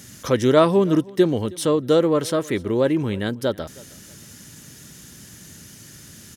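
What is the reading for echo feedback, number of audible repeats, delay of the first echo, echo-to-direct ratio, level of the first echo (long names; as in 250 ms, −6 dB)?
27%, 2, 317 ms, −22.5 dB, −23.0 dB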